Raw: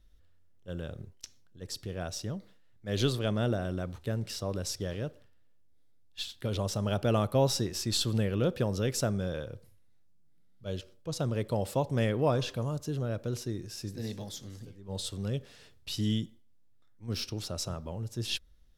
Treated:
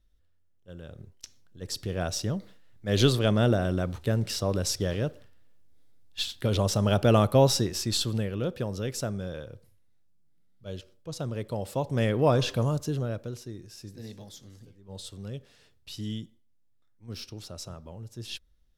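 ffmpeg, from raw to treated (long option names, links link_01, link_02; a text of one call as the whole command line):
ffmpeg -i in.wav -af "volume=15.5dB,afade=type=in:start_time=0.8:duration=1.2:silence=0.237137,afade=type=out:start_time=7.26:duration=1.06:silence=0.375837,afade=type=in:start_time=11.67:duration=0.96:silence=0.354813,afade=type=out:start_time=12.63:duration=0.73:silence=0.251189" out.wav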